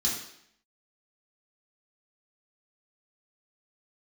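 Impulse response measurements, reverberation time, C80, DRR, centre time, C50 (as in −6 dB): 0.70 s, 7.0 dB, −5.5 dB, 42 ms, 4.0 dB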